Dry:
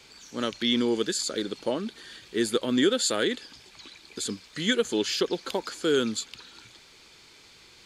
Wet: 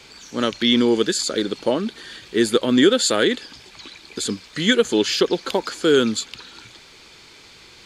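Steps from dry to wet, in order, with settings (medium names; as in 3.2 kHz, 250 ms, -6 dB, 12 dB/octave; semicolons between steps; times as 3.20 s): treble shelf 6.2 kHz -4.5 dB; trim +8 dB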